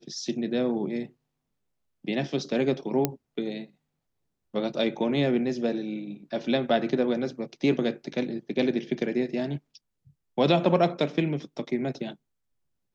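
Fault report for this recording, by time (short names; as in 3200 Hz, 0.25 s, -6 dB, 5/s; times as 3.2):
3.05 pop -8 dBFS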